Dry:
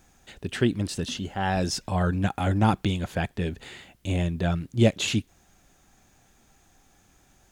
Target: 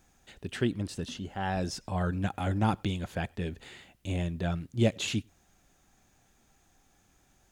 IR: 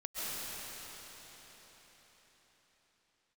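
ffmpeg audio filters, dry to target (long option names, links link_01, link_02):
-filter_complex "[1:a]atrim=start_sample=2205,atrim=end_sample=4410[link_01];[0:a][link_01]afir=irnorm=-1:irlink=0,asplit=3[link_02][link_03][link_04];[link_02]afade=type=out:start_time=0.71:duration=0.02[link_05];[link_03]adynamicequalizer=threshold=0.00398:dfrequency=1900:dqfactor=0.7:tfrequency=1900:tqfactor=0.7:attack=5:release=100:ratio=0.375:range=3:mode=cutabove:tftype=highshelf,afade=type=in:start_time=0.71:duration=0.02,afade=type=out:start_time=1.95:duration=0.02[link_06];[link_04]afade=type=in:start_time=1.95:duration=0.02[link_07];[link_05][link_06][link_07]amix=inputs=3:normalize=0"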